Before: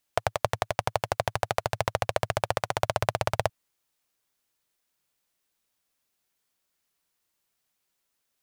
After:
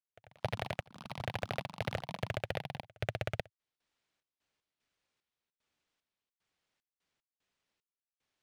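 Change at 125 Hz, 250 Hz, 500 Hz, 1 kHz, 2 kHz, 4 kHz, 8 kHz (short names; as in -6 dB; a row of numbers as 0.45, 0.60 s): -6.5, -4.0, -11.5, -15.0, -8.0, -9.0, -18.5 dB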